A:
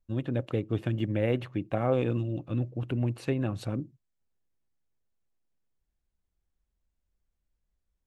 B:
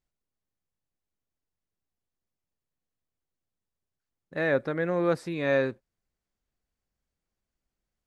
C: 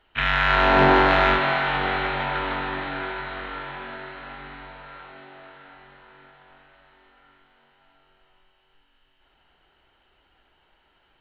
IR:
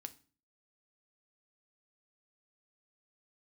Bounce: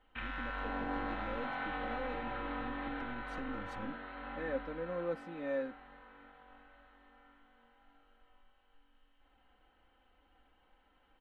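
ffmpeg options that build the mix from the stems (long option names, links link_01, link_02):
-filter_complex "[0:a]aeval=exprs='if(lt(val(0),0),0.447*val(0),val(0))':channel_layout=same,equalizer=frequency=5900:width_type=o:width=0.77:gain=6.5,adelay=100,volume=-5dB[link_01];[1:a]volume=-14.5dB[link_02];[2:a]acompressor=threshold=-24dB:ratio=6,volume=-8.5dB,asplit=2[link_03][link_04];[link_04]volume=-4dB[link_05];[link_01][link_03]amix=inputs=2:normalize=0,alimiter=level_in=10.5dB:limit=-24dB:level=0:latency=1:release=360,volume=-10.5dB,volume=0dB[link_06];[3:a]atrim=start_sample=2205[link_07];[link_05][link_07]afir=irnorm=-1:irlink=0[link_08];[link_02][link_06][link_08]amix=inputs=3:normalize=0,highshelf=frequency=2200:gain=-11.5,aecho=1:1:3.9:0.8"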